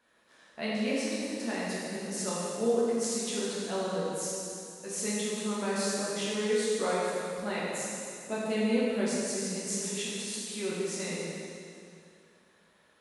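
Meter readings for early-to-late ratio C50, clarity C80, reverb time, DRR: -3.0 dB, -1.5 dB, 2.5 s, -8.0 dB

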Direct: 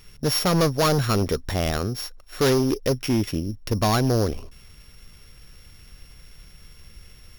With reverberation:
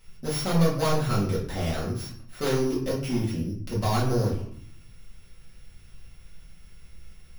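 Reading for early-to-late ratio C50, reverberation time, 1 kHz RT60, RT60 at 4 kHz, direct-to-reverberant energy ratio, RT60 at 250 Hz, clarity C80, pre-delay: 6.0 dB, 0.60 s, 0.55 s, 0.40 s, -7.0 dB, 0.90 s, 9.5 dB, 4 ms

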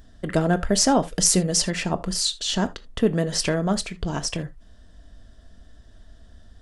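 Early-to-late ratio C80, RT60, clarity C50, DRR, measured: 26.0 dB, no single decay rate, 19.0 dB, 9.0 dB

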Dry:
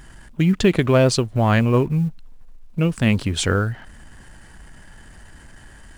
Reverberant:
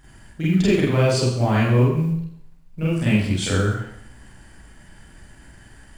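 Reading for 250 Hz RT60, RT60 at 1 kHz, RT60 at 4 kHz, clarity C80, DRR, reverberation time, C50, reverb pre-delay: 0.70 s, 0.70 s, 0.70 s, 4.5 dB, -8.0 dB, 0.70 s, 3.0 dB, 33 ms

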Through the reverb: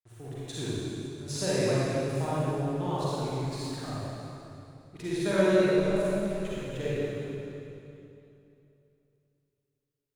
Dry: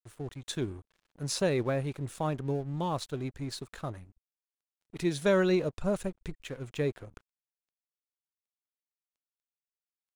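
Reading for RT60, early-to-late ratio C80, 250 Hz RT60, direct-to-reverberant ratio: 2.8 s, -4.0 dB, 3.2 s, -9.5 dB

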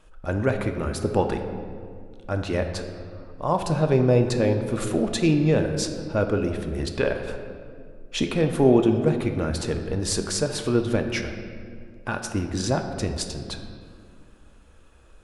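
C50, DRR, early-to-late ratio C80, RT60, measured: 7.0 dB, 5.0 dB, 8.5 dB, 2.2 s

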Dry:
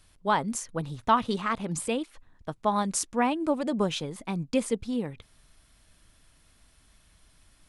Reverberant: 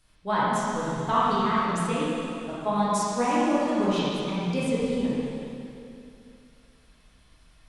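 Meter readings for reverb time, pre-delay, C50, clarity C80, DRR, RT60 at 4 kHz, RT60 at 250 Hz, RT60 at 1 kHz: 2.7 s, 6 ms, -4.5 dB, -2.5 dB, -9.5 dB, 2.5 s, 2.8 s, 2.7 s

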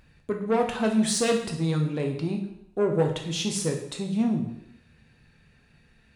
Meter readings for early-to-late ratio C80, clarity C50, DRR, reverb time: 10.0 dB, 6.5 dB, 2.0 dB, 0.75 s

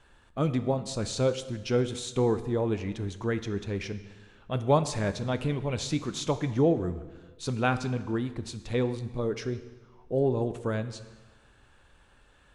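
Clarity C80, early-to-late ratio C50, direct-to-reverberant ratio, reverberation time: 14.5 dB, 13.0 dB, 11.0 dB, 1.3 s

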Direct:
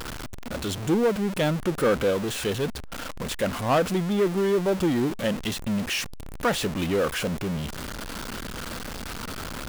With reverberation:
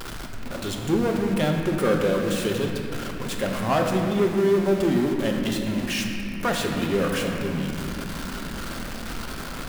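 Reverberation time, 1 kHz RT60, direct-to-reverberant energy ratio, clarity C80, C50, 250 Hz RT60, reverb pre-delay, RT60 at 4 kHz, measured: 2.9 s, 2.5 s, 1.0 dB, 3.5 dB, 3.0 dB, 5.0 s, 3 ms, 2.1 s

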